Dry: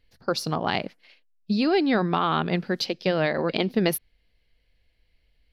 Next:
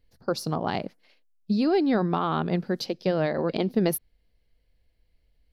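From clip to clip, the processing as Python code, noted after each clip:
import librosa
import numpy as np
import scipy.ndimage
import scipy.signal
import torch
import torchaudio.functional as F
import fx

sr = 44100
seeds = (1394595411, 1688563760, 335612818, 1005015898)

y = fx.peak_eq(x, sr, hz=2600.0, db=-9.0, octaves=2.0)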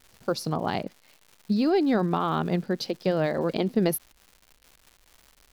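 y = fx.dmg_crackle(x, sr, seeds[0], per_s=260.0, level_db=-41.0)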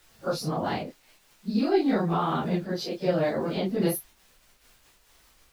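y = fx.phase_scramble(x, sr, seeds[1], window_ms=100)
y = y * 10.0 ** (-1.0 / 20.0)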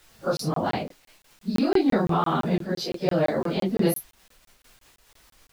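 y = fx.buffer_crackle(x, sr, first_s=0.37, period_s=0.17, block=1024, kind='zero')
y = y * 10.0 ** (3.0 / 20.0)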